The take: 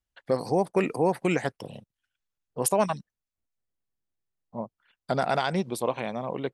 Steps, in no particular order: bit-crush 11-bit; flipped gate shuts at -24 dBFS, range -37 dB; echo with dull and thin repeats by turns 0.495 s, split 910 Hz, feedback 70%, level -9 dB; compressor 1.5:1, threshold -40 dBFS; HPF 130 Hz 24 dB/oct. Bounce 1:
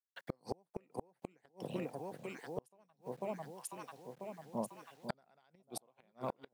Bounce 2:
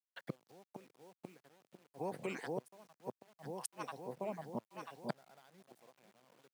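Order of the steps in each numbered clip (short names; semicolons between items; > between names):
compressor > echo with dull and thin repeats by turns > bit-crush > HPF > flipped gate; echo with dull and thin repeats by turns > flipped gate > compressor > bit-crush > HPF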